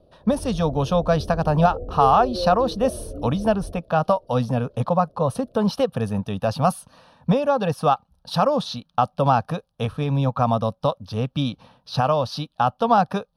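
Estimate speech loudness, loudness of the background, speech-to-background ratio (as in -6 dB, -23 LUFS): -22.5 LUFS, -33.0 LUFS, 10.5 dB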